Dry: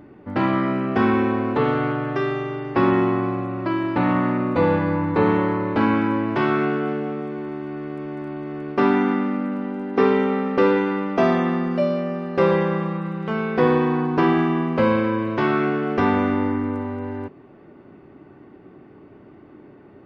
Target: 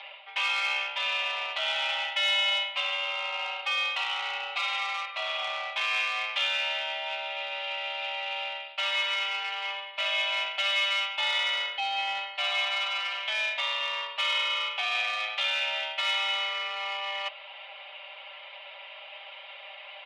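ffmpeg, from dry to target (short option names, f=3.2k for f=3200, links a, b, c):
-filter_complex "[0:a]aemphasis=mode=production:type=bsi,aecho=1:1:5.1:0.97,areverse,acompressor=threshold=-31dB:ratio=12,areverse,highpass=f=500:t=q:w=0.5412,highpass=f=500:t=q:w=1.307,lowpass=f=3.2k:t=q:w=0.5176,lowpass=f=3.2k:t=q:w=0.7071,lowpass=f=3.2k:t=q:w=1.932,afreqshift=200,asplit=2[a][b];[b]asoftclip=type=tanh:threshold=-35.5dB,volume=-10dB[c];[a][c]amix=inputs=2:normalize=0,aexciter=amount=13.2:drive=4.6:freq=2.4k"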